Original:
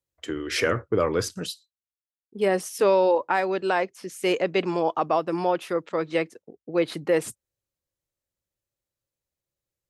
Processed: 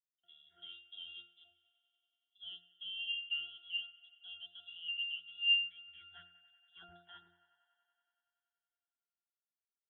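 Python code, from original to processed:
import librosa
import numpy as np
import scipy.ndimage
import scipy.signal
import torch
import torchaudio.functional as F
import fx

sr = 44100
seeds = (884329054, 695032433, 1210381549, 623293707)

p1 = fx.filter_sweep_lowpass(x, sr, from_hz=640.0, to_hz=2500.0, start_s=4.51, end_s=6.81, q=2.5)
p2 = np.sign(p1) * np.maximum(np.abs(p1) - 10.0 ** (-35.0 / 20.0), 0.0)
p3 = p1 + (p2 * librosa.db_to_amplitude(-11.0))
p4 = fx.freq_invert(p3, sr, carrier_hz=3700)
p5 = fx.octave_resonator(p4, sr, note='F', decay_s=0.51)
p6 = p5 + fx.echo_wet_bandpass(p5, sr, ms=94, feedback_pct=81, hz=1200.0, wet_db=-15.0, dry=0)
p7 = fx.rider(p6, sr, range_db=3, speed_s=2.0)
y = fx.low_shelf(p7, sr, hz=190.0, db=9.0, at=(5.85, 6.9))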